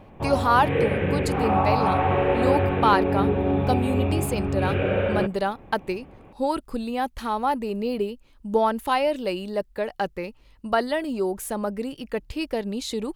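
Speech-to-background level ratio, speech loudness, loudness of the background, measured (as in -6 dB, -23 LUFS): -3.0 dB, -26.5 LUFS, -23.5 LUFS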